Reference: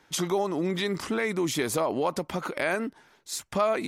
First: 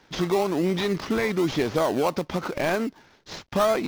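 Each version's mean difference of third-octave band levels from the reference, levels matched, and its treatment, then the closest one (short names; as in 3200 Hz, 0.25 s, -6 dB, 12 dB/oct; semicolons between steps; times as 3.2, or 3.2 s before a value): 5.0 dB: CVSD 32 kbps; in parallel at -7 dB: decimation with a swept rate 23×, swing 60% 1 Hz; on the sum: gain +1.5 dB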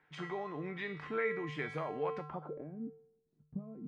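10.0 dB: resonator 150 Hz, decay 0.72 s, harmonics odd, mix 90%; low-pass sweep 2000 Hz -> 210 Hz, 2.19–2.73; gain +4 dB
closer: first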